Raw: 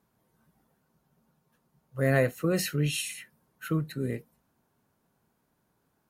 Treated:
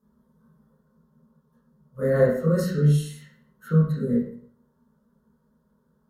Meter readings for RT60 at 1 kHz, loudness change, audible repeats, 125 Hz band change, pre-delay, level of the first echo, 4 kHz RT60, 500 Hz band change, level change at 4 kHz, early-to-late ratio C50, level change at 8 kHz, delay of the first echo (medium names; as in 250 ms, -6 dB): 0.55 s, +6.0 dB, no echo, +8.0 dB, 21 ms, no echo, 0.50 s, +6.5 dB, -8.0 dB, 2.5 dB, -7.0 dB, no echo